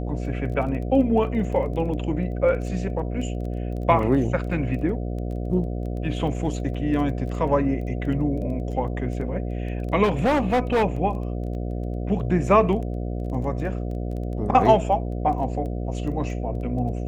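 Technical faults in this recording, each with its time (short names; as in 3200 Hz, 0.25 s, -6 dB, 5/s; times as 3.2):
buzz 60 Hz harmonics 12 -28 dBFS
crackle 12/s -32 dBFS
6.74–6.75 gap 5.1 ms
10.03–10.84 clipped -16.5 dBFS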